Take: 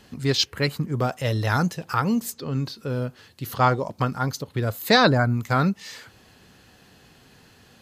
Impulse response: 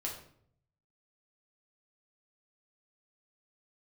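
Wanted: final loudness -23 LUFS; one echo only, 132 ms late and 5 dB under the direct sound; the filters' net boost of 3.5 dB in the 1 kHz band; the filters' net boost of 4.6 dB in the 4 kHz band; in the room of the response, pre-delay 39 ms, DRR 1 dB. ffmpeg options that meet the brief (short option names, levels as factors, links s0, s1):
-filter_complex "[0:a]equalizer=f=1000:t=o:g=4.5,equalizer=f=4000:t=o:g=5,aecho=1:1:132:0.562,asplit=2[s0][s1];[1:a]atrim=start_sample=2205,adelay=39[s2];[s1][s2]afir=irnorm=-1:irlink=0,volume=0.794[s3];[s0][s3]amix=inputs=2:normalize=0,volume=0.531"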